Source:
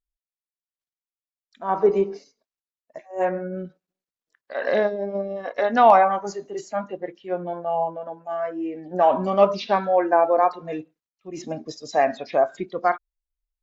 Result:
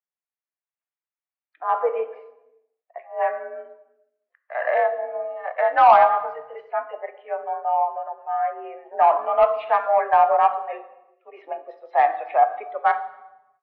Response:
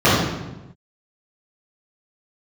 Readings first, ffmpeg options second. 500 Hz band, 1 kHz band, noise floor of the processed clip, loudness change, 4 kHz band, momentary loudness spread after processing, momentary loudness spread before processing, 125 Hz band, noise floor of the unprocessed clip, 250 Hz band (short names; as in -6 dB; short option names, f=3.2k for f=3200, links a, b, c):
-2.0 dB, +3.5 dB, under -85 dBFS, +1.0 dB, n/a, 19 LU, 16 LU, under -20 dB, under -85 dBFS, under -20 dB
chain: -filter_complex "[0:a]highpass=f=500:t=q:w=0.5412,highpass=f=500:t=q:w=1.307,lowpass=f=2.5k:t=q:w=0.5176,lowpass=f=2.5k:t=q:w=0.7071,lowpass=f=2.5k:t=q:w=1.932,afreqshift=55,acontrast=44,asplit=2[a][b];[1:a]atrim=start_sample=2205,lowshelf=f=220:g=-11.5,highshelf=f=6.3k:g=11.5[c];[b][c]afir=irnorm=-1:irlink=0,volume=-36.5dB[d];[a][d]amix=inputs=2:normalize=0,volume=-4dB"